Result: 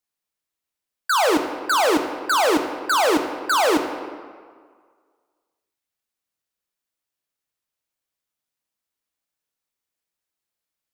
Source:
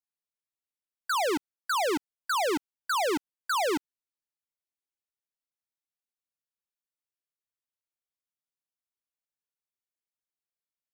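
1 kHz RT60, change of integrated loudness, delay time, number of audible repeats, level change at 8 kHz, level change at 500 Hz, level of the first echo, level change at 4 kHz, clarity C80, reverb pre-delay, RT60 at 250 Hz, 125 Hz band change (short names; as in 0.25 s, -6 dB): 1.9 s, +9.0 dB, none, none, +8.5 dB, +9.0 dB, none, +9.0 dB, 8.5 dB, 3 ms, 1.7 s, n/a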